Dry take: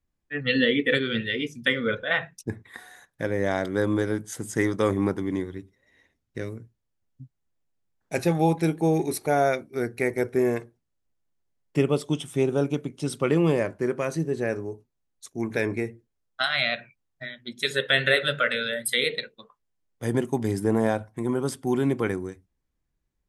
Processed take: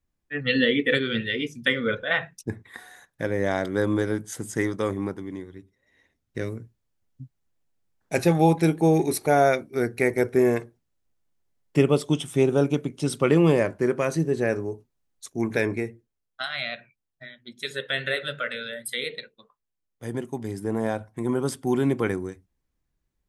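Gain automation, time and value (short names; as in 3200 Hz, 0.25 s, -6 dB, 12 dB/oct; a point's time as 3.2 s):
4.39 s +0.5 dB
5.41 s -8 dB
6.44 s +3 dB
15.49 s +3 dB
16.43 s -6 dB
20.56 s -6 dB
21.32 s +1 dB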